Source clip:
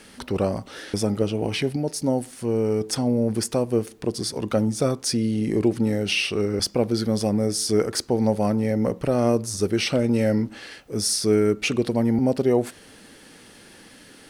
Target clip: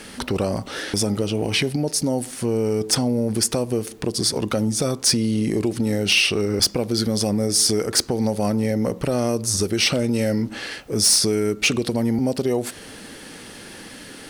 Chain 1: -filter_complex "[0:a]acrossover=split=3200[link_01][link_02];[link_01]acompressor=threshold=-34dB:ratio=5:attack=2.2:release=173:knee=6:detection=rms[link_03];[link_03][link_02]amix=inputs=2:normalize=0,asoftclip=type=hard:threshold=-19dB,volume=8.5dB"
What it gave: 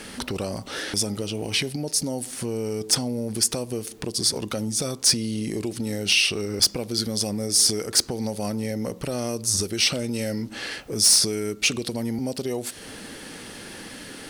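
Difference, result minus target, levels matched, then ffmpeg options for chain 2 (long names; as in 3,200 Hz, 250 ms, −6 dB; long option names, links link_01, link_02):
downward compressor: peak gain reduction +7 dB
-filter_complex "[0:a]acrossover=split=3200[link_01][link_02];[link_01]acompressor=threshold=-25.5dB:ratio=5:attack=2.2:release=173:knee=6:detection=rms[link_03];[link_03][link_02]amix=inputs=2:normalize=0,asoftclip=type=hard:threshold=-19dB,volume=8.5dB"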